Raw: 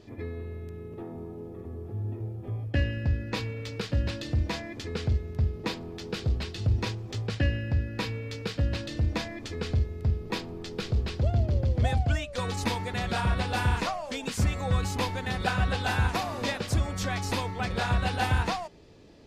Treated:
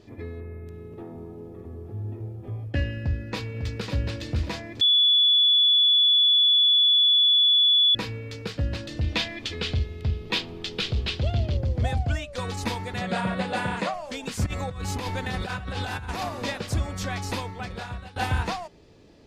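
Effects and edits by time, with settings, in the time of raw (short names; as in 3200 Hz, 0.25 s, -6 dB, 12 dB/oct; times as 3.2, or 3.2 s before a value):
0.4–0.67 spectral gain 2700–8900 Hz -13 dB
2.99–3.93 echo throw 0.55 s, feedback 30%, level -6 dB
4.81–7.95 bleep 3430 Hz -15.5 dBFS
9.01–11.57 bell 3200 Hz +13.5 dB 1.3 oct
13.01–13.94 speaker cabinet 170–9900 Hz, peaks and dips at 180 Hz +10 dB, 570 Hz +9 dB, 1900 Hz +4 dB, 5600 Hz -9 dB
14.46–16.29 negative-ratio compressor -31 dBFS
17.29–18.16 fade out, to -20.5 dB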